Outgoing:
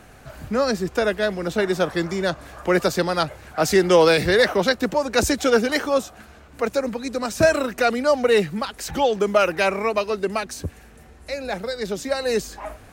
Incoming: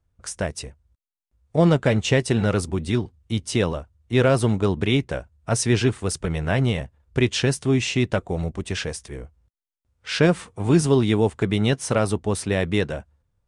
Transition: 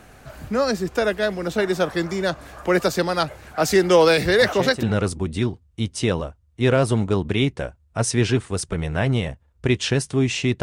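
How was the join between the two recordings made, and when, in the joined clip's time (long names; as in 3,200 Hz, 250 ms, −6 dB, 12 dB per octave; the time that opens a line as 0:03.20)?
outgoing
0:04.41: mix in incoming from 0:01.93 0.42 s −10.5 dB
0:04.83: continue with incoming from 0:02.35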